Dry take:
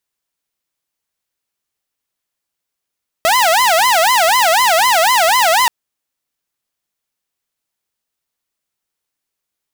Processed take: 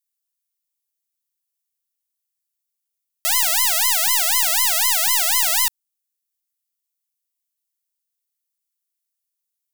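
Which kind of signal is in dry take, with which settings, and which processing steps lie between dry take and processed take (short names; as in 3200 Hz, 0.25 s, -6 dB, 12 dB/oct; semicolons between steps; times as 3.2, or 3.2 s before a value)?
siren wail 640–1030 Hz 4/s saw -7 dBFS 2.43 s
HPF 60 Hz 12 dB/oct; differentiator; sample leveller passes 2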